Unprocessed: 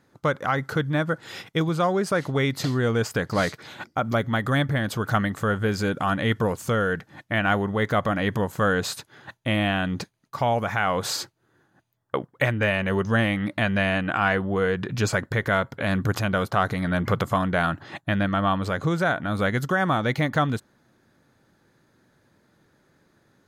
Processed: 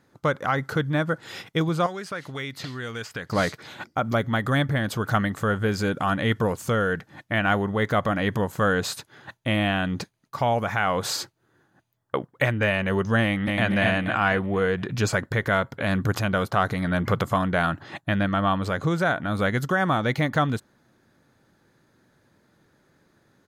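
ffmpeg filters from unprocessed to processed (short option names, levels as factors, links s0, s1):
-filter_complex "[0:a]asettb=1/sr,asplit=3[s0][s1][s2];[s0]atrim=end=1.864[s3];[s1]atrim=start=1.86:end=3.3,asetpts=PTS-STARTPTS,afade=t=in:d=0.004:c=qsin,afade=t=out:st=1.436:d=0.004:c=qsin,acrossover=split=1400|4200[s4][s5][s6];[s4]acompressor=threshold=0.0178:ratio=4[s7];[s5]acompressor=threshold=0.0224:ratio=4[s8];[s6]acompressor=threshold=0.00398:ratio=4[s9];[s7][s8][s9]amix=inputs=3:normalize=0[s10];[s2]atrim=start=3.296[s11];[s3][s10]acrossfade=d=0.004:c1=hsin:c2=qsin[s12];[s12][s11]acrossfade=d=0.004:c1=qsin:c2=hsin,asplit=2[s13][s14];[s14]afade=t=in:st=13.23:d=0.01,afade=t=out:st=13.67:d=0.01,aecho=0:1:240|480|720|960|1200|1440:0.794328|0.357448|0.160851|0.0723832|0.0325724|0.0146576[s15];[s13][s15]amix=inputs=2:normalize=0"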